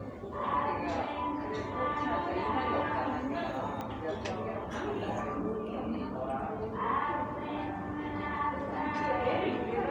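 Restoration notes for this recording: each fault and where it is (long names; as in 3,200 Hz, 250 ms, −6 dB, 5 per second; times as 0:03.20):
0:03.81: click −24 dBFS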